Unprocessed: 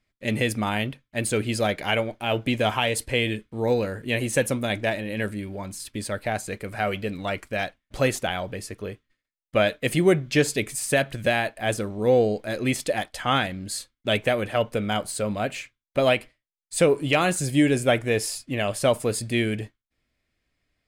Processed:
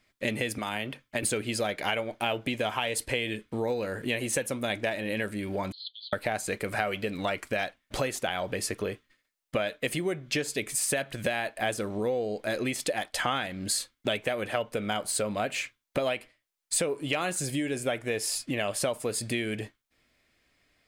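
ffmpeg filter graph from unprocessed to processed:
-filter_complex "[0:a]asettb=1/sr,asplit=3[a][b][c];[a]atrim=end=0.584[d];[b]atrim=start=0.58:end=1.23,asetpts=PTS-STARTPTS,afade=t=in:d=0.004:c=qsin,afade=t=out:st=0.646:d=0.004:c=qsin,acrossover=split=290|2400[e][f][g];[e]acompressor=threshold=-39dB:ratio=4[h];[f]acompressor=threshold=-34dB:ratio=4[i];[g]acompressor=threshold=-41dB:ratio=4[j];[h][i][j]amix=inputs=3:normalize=0,bandreject=f=3.9k:w=21[k];[c]atrim=start=1.226[l];[d][k]acrossfade=d=0.004:c1=hsin:c2=qsin[m];[m][l]acrossfade=d=0.004:c1=qsin:c2=hsin,asettb=1/sr,asplit=3[n][o][p];[n]atrim=end=5.724[q];[o]atrim=start=5.72:end=6.13,asetpts=PTS-STARTPTS,afade=t=in:d=0.004:c=qsin,afade=t=out:st=0.406:d=0.004:c=qsin,acompressor=threshold=-34dB:ratio=4:attack=3.2:release=140:knee=1:detection=peak,asuperpass=centerf=3700:order=12:qfactor=2.7[r];[p]atrim=start=6.126[s];[q][r]acrossfade=d=0.004:c1=hsin:c2=qsin[t];[t][s]acrossfade=d=0.004:c1=qsin:c2=hsin,acompressor=threshold=-34dB:ratio=10,lowshelf=f=180:g=-10,volume=9dB"

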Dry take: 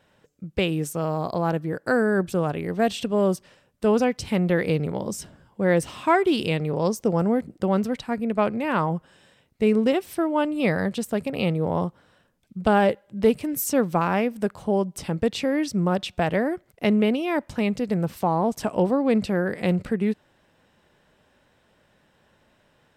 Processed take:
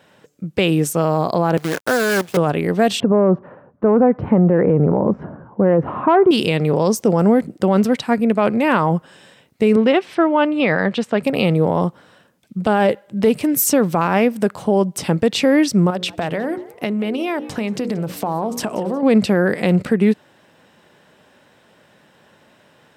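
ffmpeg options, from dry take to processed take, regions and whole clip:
-filter_complex "[0:a]asettb=1/sr,asplit=3[a][b][c];[a]atrim=end=1.574[d];[b]atrim=start=1.57:end=2.37,asetpts=PTS-STARTPTS,afade=t=in:d=0.004:c=qsin,afade=t=out:st=0.796:d=0.004:c=qsin,acrossover=split=110|590|1200|3000[e][f][g][h][i];[e]acompressor=threshold=-57dB:ratio=3[j];[f]acompressor=threshold=-32dB:ratio=3[k];[g]acompressor=threshold=-31dB:ratio=3[l];[h]acompressor=threshold=-35dB:ratio=3[m];[i]acompressor=threshold=-57dB:ratio=3[n];[j][k][l][m][n]amix=inputs=5:normalize=0,acrusher=bits=6:dc=4:mix=0:aa=0.000001[o];[c]atrim=start=2.366[p];[d][o]acrossfade=d=0.004:c1=hsin:c2=qsin[q];[q][p]acrossfade=d=0.004:c1=qsin:c2=hsin,asettb=1/sr,asplit=3[r][s][t];[r]atrim=end=3.004[u];[s]atrim=start=3:end=6.31,asetpts=PTS-STARTPTS,afade=t=in:d=0.004:c=qsin,afade=t=out:st=3.306:d=0.004:c=qsin,lowpass=f=1.3k:w=0.5412,lowpass=f=1.3k:w=1.3066,acontrast=88[v];[t]atrim=start=6.306[w];[u][v]acrossfade=d=0.004:c1=hsin:c2=qsin[x];[x][w]acrossfade=d=0.004:c1=qsin:c2=hsin,asettb=1/sr,asplit=3[y][z][aa];[y]atrim=end=9.764[ab];[z]atrim=start=9.76:end=11.23,asetpts=PTS-STARTPTS,afade=t=in:d=0.004:c=qsin,afade=t=out:st=1.466:d=0.004:c=qsin,highpass=100,lowpass=3k,tiltshelf=f=740:g=-3.5[ac];[aa]atrim=start=11.226[ad];[ab][ac]acrossfade=d=0.004:c1=hsin:c2=qsin[ae];[ae][ad]acrossfade=d=0.004:c1=qsin:c2=hsin,asettb=1/sr,asplit=3[af][ag][ah];[af]atrim=end=15.904[ai];[ag]atrim=start=15.9:end=19.03,asetpts=PTS-STARTPTS,afade=t=in:d=0.004:c=qsin,afade=t=out:st=3.126:d=0.004:c=qsin,bandreject=f=60:t=h:w=6,bandreject=f=120:t=h:w=6,bandreject=f=180:t=h:w=6,bandreject=f=240:t=h:w=6,bandreject=f=300:t=h:w=6,bandreject=f=360:t=h:w=6,bandreject=f=420:t=h:w=6,bandreject=f=480:t=h:w=6,bandreject=f=540:t=h:w=6,acompressor=threshold=-27dB:ratio=10:attack=3.2:release=140:knee=1:detection=peak,asplit=4[aj][ak][al][am];[ak]adelay=181,afreqshift=120,volume=-20dB[an];[al]adelay=362,afreqshift=240,volume=-29.6dB[ao];[am]adelay=543,afreqshift=360,volume=-39.3dB[ap];[aj][an][ao][ap]amix=inputs=4:normalize=0,atrim=end_sample=138033[aq];[ah]atrim=start=19.026[ar];[ai][aq]acrossfade=d=0.004:c1=hsin:c2=qsin[as];[as][ar]acrossfade=d=0.004:c1=qsin:c2=hsin,highpass=130,alimiter=level_in=15dB:limit=-1dB:release=50:level=0:latency=1,volume=-5dB"

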